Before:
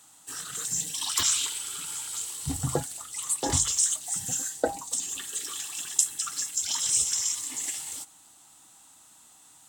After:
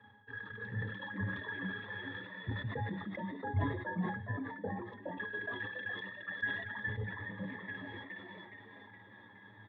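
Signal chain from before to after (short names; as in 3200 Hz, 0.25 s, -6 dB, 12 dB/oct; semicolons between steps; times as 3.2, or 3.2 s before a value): treble ducked by the level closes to 970 Hz, closed at -23.5 dBFS; speaker cabinet 110–2600 Hz, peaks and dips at 110 Hz +9 dB, 170 Hz -9 dB, 380 Hz -6 dB, 550 Hz +7 dB, 810 Hz -7 dB, 1600 Hz +10 dB; transient shaper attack +8 dB, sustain -9 dB; reverse; compressor 10:1, threshold -44 dBFS, peak gain reduction 34 dB; reverse; octave resonator G#, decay 0.14 s; frequency-shifting echo 0.417 s, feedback 43%, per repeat +85 Hz, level -3 dB; on a send at -22 dB: reverb RT60 0.65 s, pre-delay 93 ms; on the sum: sustainer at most 60 dB/s; gain +18 dB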